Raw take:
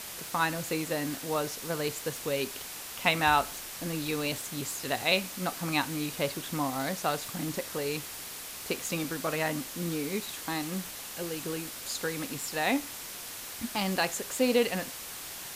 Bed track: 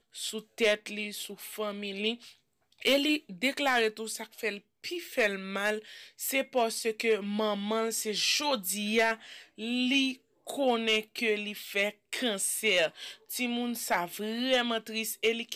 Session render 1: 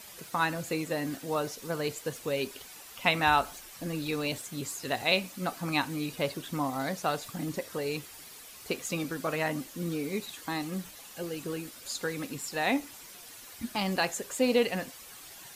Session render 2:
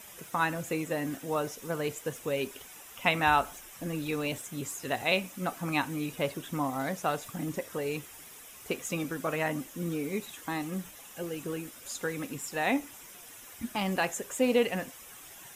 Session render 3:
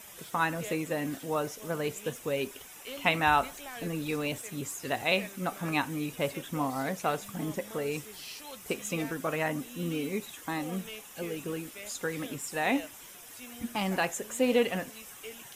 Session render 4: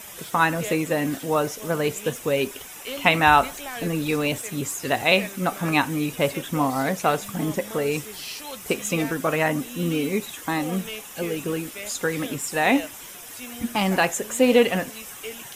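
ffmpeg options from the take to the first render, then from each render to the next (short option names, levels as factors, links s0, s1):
-af "afftdn=nr=10:nf=-42"
-af "equalizer=f=4400:w=4.3:g=-12.5"
-filter_complex "[1:a]volume=0.141[s0];[0:a][s0]amix=inputs=2:normalize=0"
-af "volume=2.66,alimiter=limit=0.708:level=0:latency=1"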